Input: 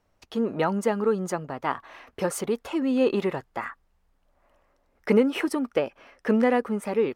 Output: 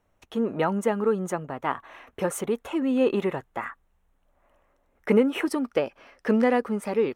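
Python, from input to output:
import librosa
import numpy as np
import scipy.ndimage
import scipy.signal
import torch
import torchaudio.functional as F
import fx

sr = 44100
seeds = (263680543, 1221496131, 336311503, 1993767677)

y = fx.peak_eq(x, sr, hz=4800.0, db=fx.steps((0.0, -14.0), (5.46, 2.0)), octaves=0.32)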